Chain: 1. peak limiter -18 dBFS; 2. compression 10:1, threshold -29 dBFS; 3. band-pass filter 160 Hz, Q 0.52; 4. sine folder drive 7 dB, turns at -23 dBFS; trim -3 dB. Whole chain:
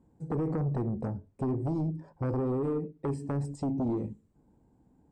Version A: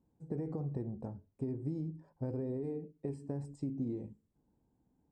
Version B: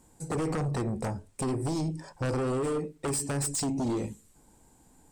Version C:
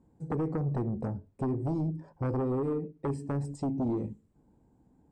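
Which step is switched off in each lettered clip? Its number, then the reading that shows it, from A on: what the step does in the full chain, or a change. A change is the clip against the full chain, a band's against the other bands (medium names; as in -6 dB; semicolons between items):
4, distortion -9 dB; 3, 2 kHz band +11.0 dB; 1, 2 kHz band +1.5 dB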